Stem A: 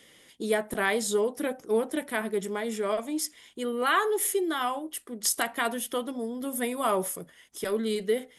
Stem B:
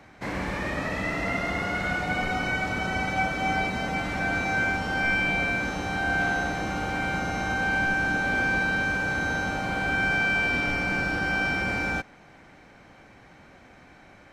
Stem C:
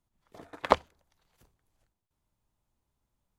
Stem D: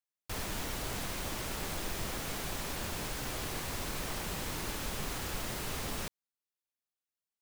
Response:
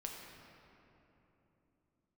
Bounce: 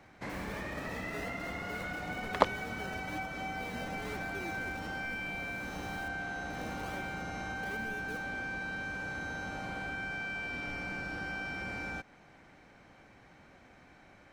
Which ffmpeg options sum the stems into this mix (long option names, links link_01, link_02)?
-filter_complex "[0:a]highshelf=frequency=5900:gain=-11.5,alimiter=level_in=1.5dB:limit=-24dB:level=0:latency=1,volume=-1.5dB,acrusher=samples=28:mix=1:aa=0.000001:lfo=1:lforange=28:lforate=1.1,volume=-14dB,asplit=3[link_01][link_02][link_03];[link_01]atrim=end=5.2,asetpts=PTS-STARTPTS,afade=type=out:start_time=5.196:duration=0.004:curve=hsin[link_04];[link_02]atrim=start=5.2:end=6.5,asetpts=PTS-STARTPTS,volume=0[link_05];[link_03]atrim=start=6.5,asetpts=PTS-STARTPTS,afade=type=in:duration=0.004:curve=hsin[link_06];[link_04][link_05][link_06]concat=n=3:v=0:a=1,asplit=2[link_07][link_08];[1:a]acompressor=threshold=-30dB:ratio=4,volume=-6.5dB[link_09];[2:a]adelay=1700,volume=-3dB[link_10];[3:a]volume=-15dB[link_11];[link_08]apad=whole_len=326813[link_12];[link_11][link_12]sidechaincompress=threshold=-55dB:ratio=8:attack=16:release=1390[link_13];[link_07][link_09][link_10][link_13]amix=inputs=4:normalize=0"